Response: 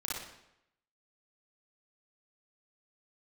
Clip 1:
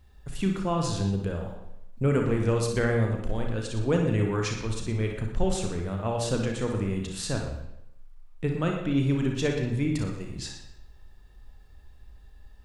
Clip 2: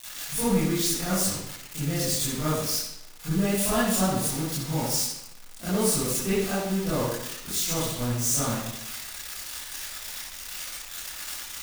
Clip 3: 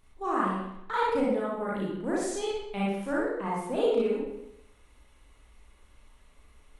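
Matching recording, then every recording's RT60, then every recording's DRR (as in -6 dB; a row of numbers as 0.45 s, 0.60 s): 3; 0.80 s, 0.80 s, 0.80 s; 1.5 dB, -15.0 dB, -6.5 dB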